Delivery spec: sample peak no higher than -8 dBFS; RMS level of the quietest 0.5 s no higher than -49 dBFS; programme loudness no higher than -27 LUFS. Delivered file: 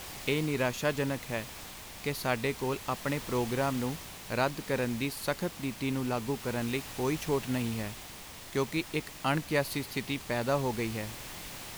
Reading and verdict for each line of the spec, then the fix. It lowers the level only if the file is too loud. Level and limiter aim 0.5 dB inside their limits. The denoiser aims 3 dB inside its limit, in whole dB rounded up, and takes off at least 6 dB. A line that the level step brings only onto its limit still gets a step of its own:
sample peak -14.0 dBFS: pass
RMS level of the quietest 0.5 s -46 dBFS: fail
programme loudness -32.5 LUFS: pass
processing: noise reduction 6 dB, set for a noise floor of -46 dBFS

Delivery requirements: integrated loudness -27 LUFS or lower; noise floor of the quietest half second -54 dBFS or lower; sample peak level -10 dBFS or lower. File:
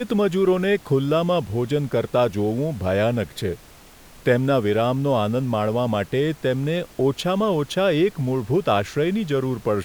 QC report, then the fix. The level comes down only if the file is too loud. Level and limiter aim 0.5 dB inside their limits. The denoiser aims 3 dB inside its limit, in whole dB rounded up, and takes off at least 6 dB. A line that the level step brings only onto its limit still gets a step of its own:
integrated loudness -22.0 LUFS: fail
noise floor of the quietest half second -47 dBFS: fail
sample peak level -6.0 dBFS: fail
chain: noise reduction 6 dB, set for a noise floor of -47 dBFS; trim -5.5 dB

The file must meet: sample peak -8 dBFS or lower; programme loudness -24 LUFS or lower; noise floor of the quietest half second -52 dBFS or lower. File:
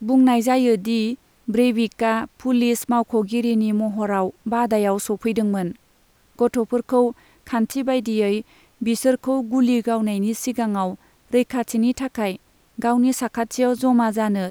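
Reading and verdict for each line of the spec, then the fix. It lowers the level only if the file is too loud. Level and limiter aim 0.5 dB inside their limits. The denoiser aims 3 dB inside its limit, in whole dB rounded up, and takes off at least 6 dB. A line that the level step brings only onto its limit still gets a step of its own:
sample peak -6.0 dBFS: fail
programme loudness -21.0 LUFS: fail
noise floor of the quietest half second -58 dBFS: pass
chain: trim -3.5 dB

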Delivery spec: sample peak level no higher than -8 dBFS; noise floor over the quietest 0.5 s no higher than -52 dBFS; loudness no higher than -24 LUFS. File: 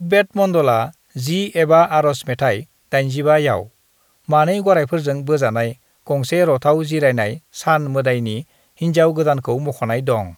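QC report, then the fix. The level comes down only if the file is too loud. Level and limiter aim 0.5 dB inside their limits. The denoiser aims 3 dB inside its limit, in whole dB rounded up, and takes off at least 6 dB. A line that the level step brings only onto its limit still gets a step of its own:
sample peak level -2.0 dBFS: fail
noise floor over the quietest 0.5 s -59 dBFS: pass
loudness -17.5 LUFS: fail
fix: trim -7 dB

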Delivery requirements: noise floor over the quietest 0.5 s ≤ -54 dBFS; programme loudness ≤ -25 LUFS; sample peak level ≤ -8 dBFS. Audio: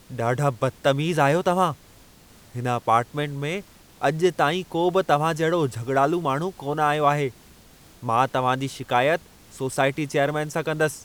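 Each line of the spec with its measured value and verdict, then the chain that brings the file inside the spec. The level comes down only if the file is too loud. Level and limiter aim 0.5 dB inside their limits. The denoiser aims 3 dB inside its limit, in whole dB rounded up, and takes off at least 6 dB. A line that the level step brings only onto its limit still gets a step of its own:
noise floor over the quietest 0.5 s -51 dBFS: fail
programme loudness -23.5 LUFS: fail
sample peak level -6.0 dBFS: fail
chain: noise reduction 6 dB, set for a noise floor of -51 dBFS; trim -2 dB; peak limiter -8.5 dBFS

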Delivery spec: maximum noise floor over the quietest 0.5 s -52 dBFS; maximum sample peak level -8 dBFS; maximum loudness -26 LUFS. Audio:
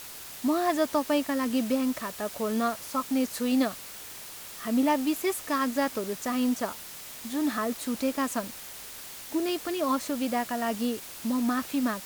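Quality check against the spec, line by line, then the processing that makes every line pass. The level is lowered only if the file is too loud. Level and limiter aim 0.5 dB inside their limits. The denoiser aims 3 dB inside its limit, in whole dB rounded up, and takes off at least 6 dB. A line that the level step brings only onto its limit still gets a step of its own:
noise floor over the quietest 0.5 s -43 dBFS: fail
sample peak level -13.5 dBFS: pass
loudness -29.0 LUFS: pass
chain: noise reduction 12 dB, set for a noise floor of -43 dBFS

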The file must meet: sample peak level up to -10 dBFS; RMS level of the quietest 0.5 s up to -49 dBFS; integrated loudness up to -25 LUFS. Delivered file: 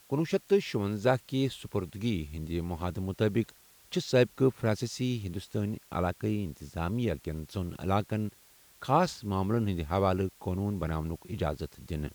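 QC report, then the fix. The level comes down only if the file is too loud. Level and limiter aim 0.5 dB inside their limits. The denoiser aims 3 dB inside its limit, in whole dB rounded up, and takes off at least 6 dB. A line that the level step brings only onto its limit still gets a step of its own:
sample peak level -11.5 dBFS: pass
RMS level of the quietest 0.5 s -59 dBFS: pass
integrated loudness -31.5 LUFS: pass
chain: none needed

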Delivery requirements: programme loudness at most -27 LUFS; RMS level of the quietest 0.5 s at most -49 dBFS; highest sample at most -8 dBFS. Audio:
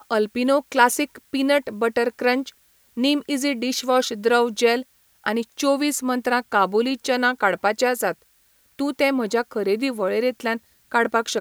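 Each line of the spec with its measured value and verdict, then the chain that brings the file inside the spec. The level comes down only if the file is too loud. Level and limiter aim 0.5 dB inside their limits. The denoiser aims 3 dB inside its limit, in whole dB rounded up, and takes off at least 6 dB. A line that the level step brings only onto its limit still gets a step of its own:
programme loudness -22.0 LUFS: fail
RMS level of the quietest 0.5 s -60 dBFS: pass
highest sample -2.0 dBFS: fail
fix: trim -5.5 dB; peak limiter -8.5 dBFS

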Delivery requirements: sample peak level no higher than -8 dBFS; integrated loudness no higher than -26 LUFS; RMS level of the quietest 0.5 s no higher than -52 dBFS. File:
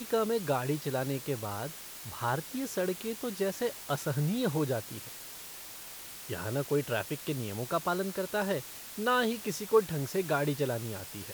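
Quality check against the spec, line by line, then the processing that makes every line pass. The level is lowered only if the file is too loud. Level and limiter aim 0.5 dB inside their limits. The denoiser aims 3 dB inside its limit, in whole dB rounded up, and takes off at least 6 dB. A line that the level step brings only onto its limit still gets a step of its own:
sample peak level -12.0 dBFS: pass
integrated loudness -33.0 LUFS: pass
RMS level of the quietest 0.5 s -45 dBFS: fail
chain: noise reduction 10 dB, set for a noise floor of -45 dBFS

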